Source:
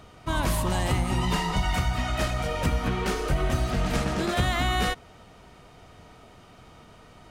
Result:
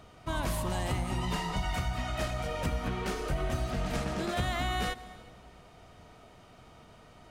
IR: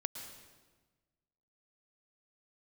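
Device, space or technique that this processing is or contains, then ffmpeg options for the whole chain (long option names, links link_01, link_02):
compressed reverb return: -filter_complex "[0:a]asplit=2[link_01][link_02];[1:a]atrim=start_sample=2205[link_03];[link_02][link_03]afir=irnorm=-1:irlink=0,acompressor=threshold=-31dB:ratio=6,volume=-3.5dB[link_04];[link_01][link_04]amix=inputs=2:normalize=0,equalizer=frequency=660:width_type=o:width=0.3:gain=3,volume=-8.5dB"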